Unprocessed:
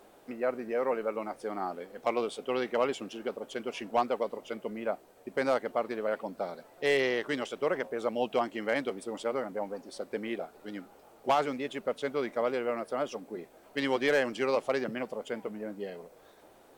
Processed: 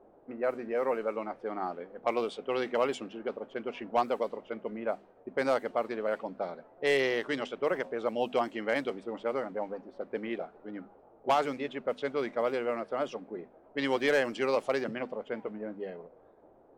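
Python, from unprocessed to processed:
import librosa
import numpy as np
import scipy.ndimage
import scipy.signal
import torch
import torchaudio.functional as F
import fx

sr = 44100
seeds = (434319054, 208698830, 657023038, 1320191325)

y = fx.env_lowpass(x, sr, base_hz=710.0, full_db=-25.0)
y = fx.hum_notches(y, sr, base_hz=50, count=5)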